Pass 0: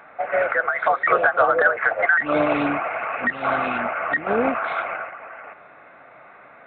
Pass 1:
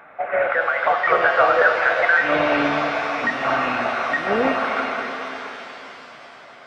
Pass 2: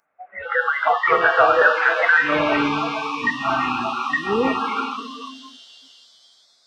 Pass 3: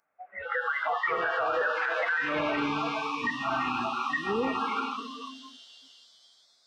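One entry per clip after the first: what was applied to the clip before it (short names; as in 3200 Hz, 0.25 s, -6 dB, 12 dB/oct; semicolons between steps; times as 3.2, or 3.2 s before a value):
shimmer reverb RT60 3.6 s, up +7 st, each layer -8 dB, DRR 4 dB
spectral noise reduction 29 dB; gain +1.5 dB
limiter -14 dBFS, peak gain reduction 10.5 dB; gain -6 dB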